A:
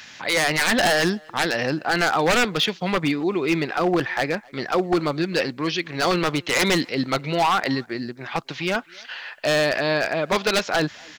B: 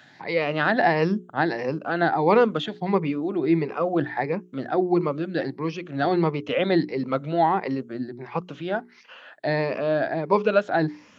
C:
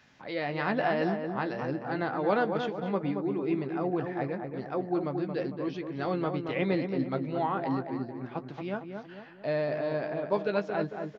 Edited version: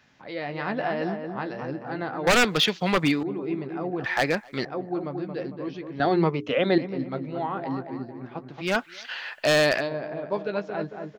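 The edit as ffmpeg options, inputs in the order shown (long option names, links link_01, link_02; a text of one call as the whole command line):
ffmpeg -i take0.wav -i take1.wav -i take2.wav -filter_complex "[0:a]asplit=3[link_01][link_02][link_03];[2:a]asplit=5[link_04][link_05][link_06][link_07][link_08];[link_04]atrim=end=2.272[link_09];[link_01]atrim=start=2.268:end=3.232[link_10];[link_05]atrim=start=3.228:end=4.042[link_11];[link_02]atrim=start=4.038:end=4.652[link_12];[link_06]atrim=start=4.648:end=6.002[link_13];[1:a]atrim=start=5.998:end=6.782[link_14];[link_07]atrim=start=6.778:end=8.74[link_15];[link_03]atrim=start=8.58:end=9.9[link_16];[link_08]atrim=start=9.74[link_17];[link_09][link_10]acrossfade=duration=0.004:curve1=hsin:curve2=hsin[link_18];[link_18][link_11]acrossfade=duration=0.004:curve1=hsin:curve2=hsin[link_19];[link_19][link_12]acrossfade=duration=0.004:curve1=hsin:curve2=hsin[link_20];[link_20][link_13]acrossfade=duration=0.004:curve1=hsin:curve2=hsin[link_21];[link_21][link_14]acrossfade=duration=0.004:curve1=hsin:curve2=hsin[link_22];[link_22][link_15]acrossfade=duration=0.004:curve1=hsin:curve2=hsin[link_23];[link_23][link_16]acrossfade=duration=0.16:curve1=tri:curve2=tri[link_24];[link_24][link_17]acrossfade=duration=0.16:curve1=tri:curve2=tri" out.wav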